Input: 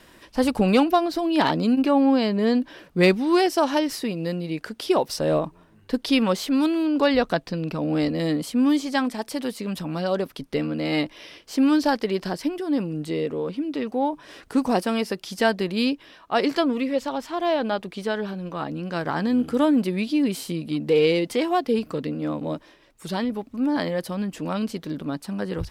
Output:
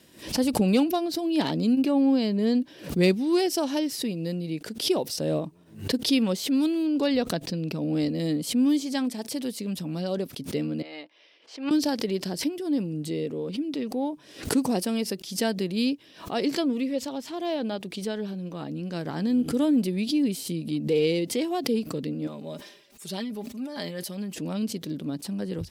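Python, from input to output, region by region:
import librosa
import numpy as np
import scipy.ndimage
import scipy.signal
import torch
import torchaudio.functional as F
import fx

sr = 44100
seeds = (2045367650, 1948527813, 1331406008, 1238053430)

y = fx.chain(x, sr, fx.highpass(hz=800.0, slope=12),
    fx.spacing_loss(db_at_10k=29), at=(10.82, 11.71))
y = fx.chain(y, sr, fx.low_shelf(hz=370.0, db=-11.5),
    fx.comb(ms=5.0, depth=0.66),
    fx.sustainer(db_per_s=78.0), at=(22.27, 24.35))
y = scipy.signal.sosfilt(scipy.signal.butter(2, 110.0, 'highpass', fs=sr, output='sos'), y)
y = fx.peak_eq(y, sr, hz=1200.0, db=-13.0, octaves=2.1)
y = fx.pre_swell(y, sr, db_per_s=130.0)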